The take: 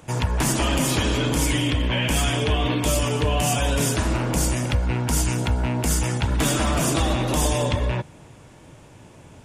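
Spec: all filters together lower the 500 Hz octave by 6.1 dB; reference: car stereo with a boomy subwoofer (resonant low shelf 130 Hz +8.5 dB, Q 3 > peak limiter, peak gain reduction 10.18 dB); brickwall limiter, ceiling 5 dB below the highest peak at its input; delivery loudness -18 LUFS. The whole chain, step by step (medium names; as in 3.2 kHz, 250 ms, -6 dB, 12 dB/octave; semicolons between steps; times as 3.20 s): peaking EQ 500 Hz -7 dB; peak limiter -15 dBFS; resonant low shelf 130 Hz +8.5 dB, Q 3; trim +2.5 dB; peak limiter -9.5 dBFS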